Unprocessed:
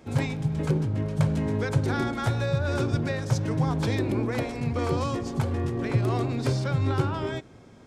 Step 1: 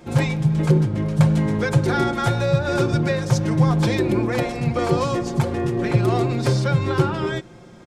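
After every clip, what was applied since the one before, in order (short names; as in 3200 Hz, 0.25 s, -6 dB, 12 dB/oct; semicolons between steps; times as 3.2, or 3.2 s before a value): comb 5.7 ms, depth 60%; gain +5.5 dB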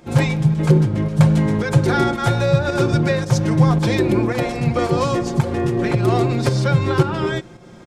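pump 111 bpm, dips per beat 1, -7 dB, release 0.191 s; gain +3 dB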